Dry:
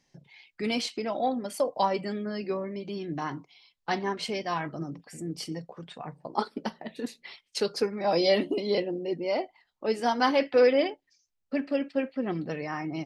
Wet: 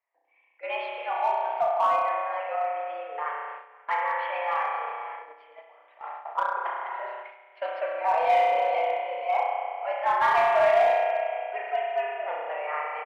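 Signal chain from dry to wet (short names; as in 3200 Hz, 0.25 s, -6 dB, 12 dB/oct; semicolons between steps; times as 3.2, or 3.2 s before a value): on a send: echo 0.529 s -13.5 dB; on the sum: low-pass opened by the level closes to 1800 Hz, open at -25.5 dBFS; mistuned SSB +140 Hz 480–2500 Hz; spring tank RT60 2.2 s, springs 32 ms, chirp 80 ms, DRR -3.5 dB; in parallel at -3 dB: overloaded stage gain 20 dB; on the sum: gate -34 dBFS, range -10 dB; gain -4 dB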